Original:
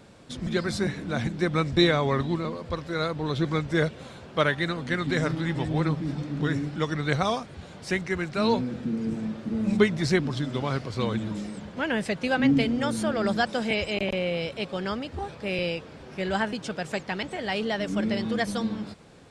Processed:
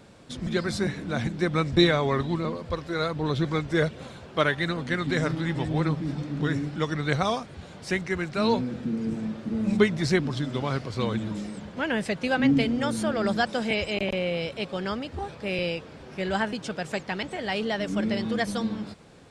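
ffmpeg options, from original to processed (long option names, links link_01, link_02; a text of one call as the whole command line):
ffmpeg -i in.wav -filter_complex "[0:a]asettb=1/sr,asplit=3[link_01][link_02][link_03];[link_01]atrim=end=1.734[link_04];[link_02]atrim=start=1.73:end=4.83,asetpts=PTS-STARTPTS,afade=type=in:duration=0.004:curve=qsin,afade=type=out:start_time=3.096:duration=0.004:curve=qsin,aphaser=in_gain=1:out_gain=1:delay=2.9:decay=0.21:speed=1.3:type=sinusoidal[link_05];[link_03]atrim=start=4.826[link_06];[link_04][link_05]acrossfade=duration=0.004:curve1=hsin:curve2=qsin[link_07];[link_07][link_06]acrossfade=duration=0.004:curve1=qsin:curve2=hsin" out.wav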